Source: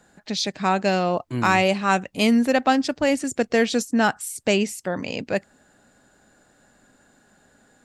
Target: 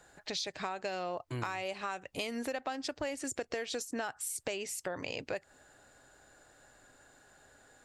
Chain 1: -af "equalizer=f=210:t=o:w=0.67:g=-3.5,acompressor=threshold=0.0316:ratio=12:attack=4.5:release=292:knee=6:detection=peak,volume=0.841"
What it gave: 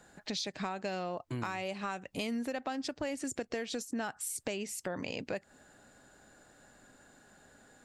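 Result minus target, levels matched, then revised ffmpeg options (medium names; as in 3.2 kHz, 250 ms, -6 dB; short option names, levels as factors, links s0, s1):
250 Hz band +4.0 dB
-af "equalizer=f=210:t=o:w=0.67:g=-15.5,acompressor=threshold=0.0316:ratio=12:attack=4.5:release=292:knee=6:detection=peak,volume=0.841"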